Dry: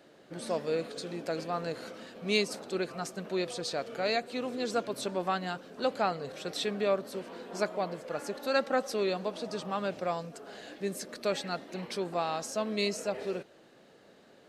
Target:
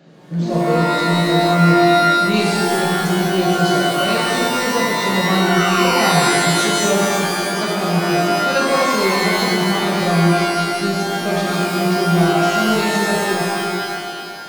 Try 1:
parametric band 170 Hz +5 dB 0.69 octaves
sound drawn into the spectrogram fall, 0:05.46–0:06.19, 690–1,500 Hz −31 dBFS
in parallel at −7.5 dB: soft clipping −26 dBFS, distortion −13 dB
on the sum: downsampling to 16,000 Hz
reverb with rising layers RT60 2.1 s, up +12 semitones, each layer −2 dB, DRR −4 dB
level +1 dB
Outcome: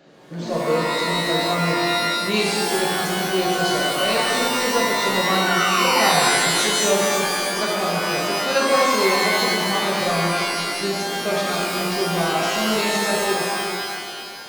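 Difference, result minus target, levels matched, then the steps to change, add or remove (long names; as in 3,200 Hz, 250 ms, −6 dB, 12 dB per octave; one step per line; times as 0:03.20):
125 Hz band −7.0 dB
change: parametric band 170 Hz +17 dB 0.69 octaves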